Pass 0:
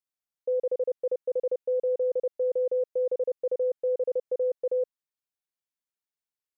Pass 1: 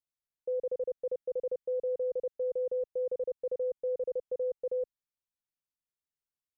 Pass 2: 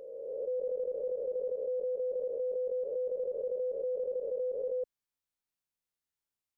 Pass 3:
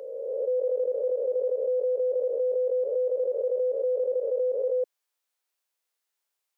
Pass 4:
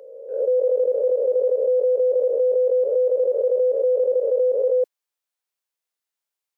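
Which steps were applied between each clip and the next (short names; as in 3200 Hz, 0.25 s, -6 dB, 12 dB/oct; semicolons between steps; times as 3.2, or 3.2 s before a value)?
low shelf 180 Hz +12 dB; gain -7 dB
spectral swells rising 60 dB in 2.15 s; gain -2 dB
HPF 410 Hz 24 dB/oct; gain +8.5 dB
gate -30 dBFS, range -11 dB; gain +7 dB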